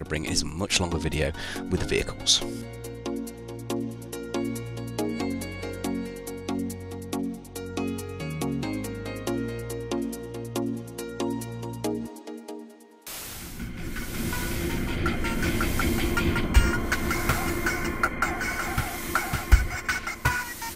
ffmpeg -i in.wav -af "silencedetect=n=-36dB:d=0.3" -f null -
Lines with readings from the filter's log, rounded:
silence_start: 12.64
silence_end: 13.07 | silence_duration: 0.42